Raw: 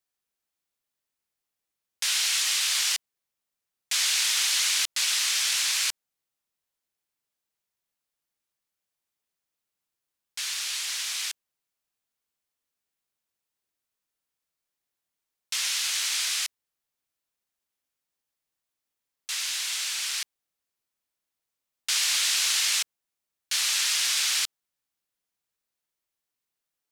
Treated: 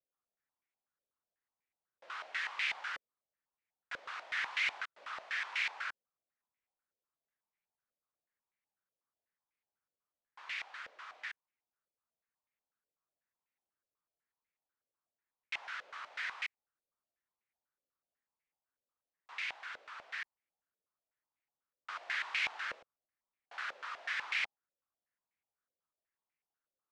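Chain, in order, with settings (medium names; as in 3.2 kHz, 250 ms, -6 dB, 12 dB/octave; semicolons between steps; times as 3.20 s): step-sequenced low-pass 8.1 Hz 540–2200 Hz; trim -8.5 dB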